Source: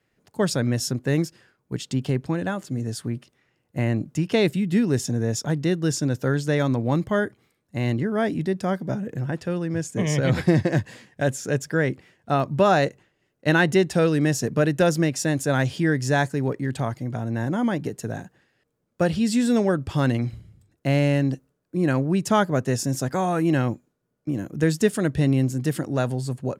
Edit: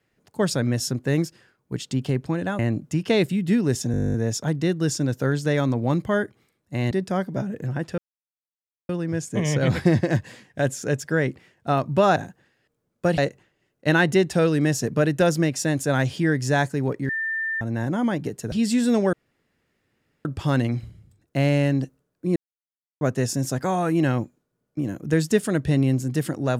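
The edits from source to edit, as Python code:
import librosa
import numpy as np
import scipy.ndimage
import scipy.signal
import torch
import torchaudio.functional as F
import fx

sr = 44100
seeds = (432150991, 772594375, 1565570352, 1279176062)

y = fx.edit(x, sr, fx.cut(start_s=2.59, length_s=1.24),
    fx.stutter(start_s=5.16, slice_s=0.02, count=12),
    fx.cut(start_s=7.93, length_s=0.51),
    fx.insert_silence(at_s=9.51, length_s=0.91),
    fx.bleep(start_s=16.69, length_s=0.52, hz=1790.0, db=-23.5),
    fx.move(start_s=18.12, length_s=1.02, to_s=12.78),
    fx.insert_room_tone(at_s=19.75, length_s=1.12),
    fx.silence(start_s=21.86, length_s=0.65), tone=tone)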